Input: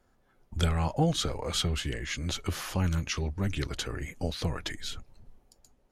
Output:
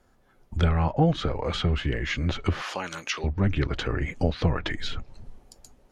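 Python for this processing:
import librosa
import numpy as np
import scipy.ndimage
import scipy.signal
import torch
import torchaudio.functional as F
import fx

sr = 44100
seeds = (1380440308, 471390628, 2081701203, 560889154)

p1 = fx.rider(x, sr, range_db=10, speed_s=0.5)
p2 = x + (p1 * librosa.db_to_amplitude(0.5))
p3 = fx.highpass(p2, sr, hz=500.0, slope=12, at=(2.62, 3.24))
y = fx.env_lowpass_down(p3, sr, base_hz=2300.0, full_db=-22.0)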